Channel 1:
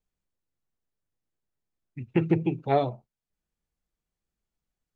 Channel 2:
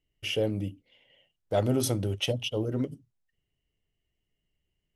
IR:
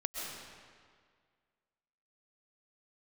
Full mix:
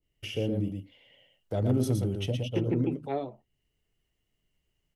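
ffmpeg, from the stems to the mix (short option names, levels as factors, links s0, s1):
-filter_complex "[0:a]highpass=300,adelay=400,volume=1.06[s0];[1:a]adynamicequalizer=threshold=0.00631:dfrequency=1500:dqfactor=0.7:tfrequency=1500:tqfactor=0.7:attack=5:release=100:ratio=0.375:range=2.5:mode=cutabove:tftype=highshelf,volume=1.19,asplit=2[s1][s2];[s2]volume=0.562,aecho=0:1:115:1[s3];[s0][s1][s3]amix=inputs=3:normalize=0,acrossover=split=360[s4][s5];[s5]acompressor=threshold=0.00631:ratio=2[s6];[s4][s6]amix=inputs=2:normalize=0,asoftclip=type=hard:threshold=0.168"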